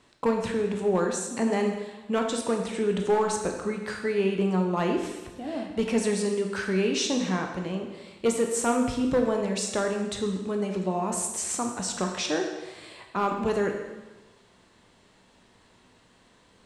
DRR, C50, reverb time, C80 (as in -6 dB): 2.5 dB, 5.0 dB, 1.2 s, 7.0 dB